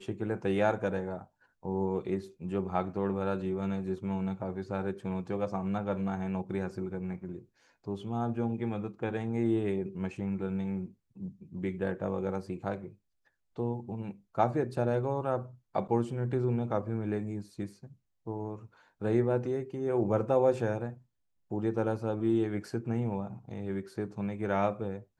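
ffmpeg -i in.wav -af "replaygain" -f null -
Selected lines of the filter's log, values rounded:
track_gain = +13.2 dB
track_peak = 0.180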